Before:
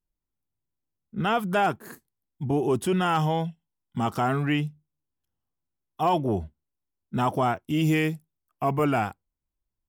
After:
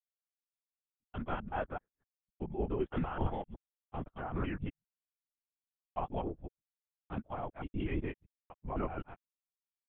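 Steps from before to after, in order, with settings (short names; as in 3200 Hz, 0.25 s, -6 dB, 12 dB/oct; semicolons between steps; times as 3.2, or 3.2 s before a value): local time reversal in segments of 0.127 s; limiter -19 dBFS, peak gain reduction 5.5 dB; LPC vocoder at 8 kHz whisper; treble ducked by the level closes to 2200 Hz, closed at -25.5 dBFS; upward expander 2.5:1, over -48 dBFS; gain -4.5 dB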